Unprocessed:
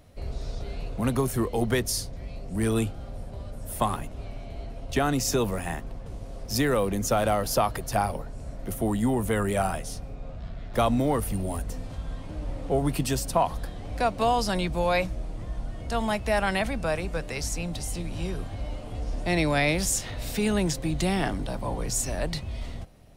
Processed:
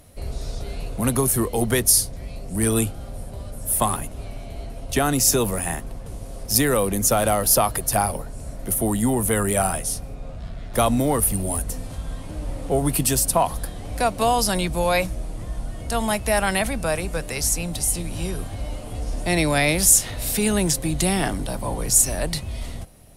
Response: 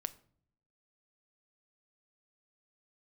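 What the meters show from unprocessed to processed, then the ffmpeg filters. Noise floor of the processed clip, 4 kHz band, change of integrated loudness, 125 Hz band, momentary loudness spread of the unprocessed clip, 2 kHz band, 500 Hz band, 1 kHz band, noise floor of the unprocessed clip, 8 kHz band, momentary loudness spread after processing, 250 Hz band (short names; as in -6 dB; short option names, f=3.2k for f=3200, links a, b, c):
-36 dBFS, +6.0 dB, +7.0 dB, +3.5 dB, 15 LU, +4.0 dB, +3.5 dB, +3.5 dB, -39 dBFS, +13.0 dB, 17 LU, +3.5 dB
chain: -af "equalizer=f=11k:w=0.92:g=15,volume=3.5dB"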